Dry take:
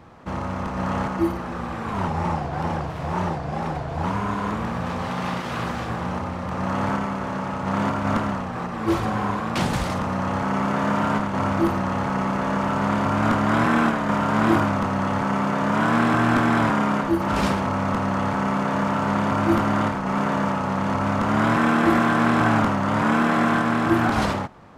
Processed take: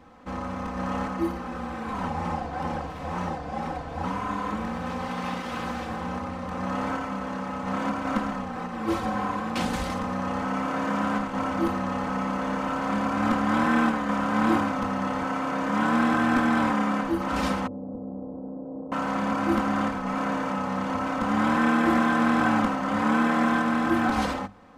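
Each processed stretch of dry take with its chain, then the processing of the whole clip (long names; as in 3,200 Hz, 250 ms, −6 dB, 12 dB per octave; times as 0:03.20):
0:17.67–0:18.92: inverse Chebyshev band-stop filter 2,300–8,700 Hz, stop band 80 dB + low-shelf EQ 250 Hz −10.5 dB + highs frequency-modulated by the lows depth 0.15 ms
whole clip: mains-hum notches 50/100/150/200 Hz; comb filter 3.9 ms, depth 69%; level −5.5 dB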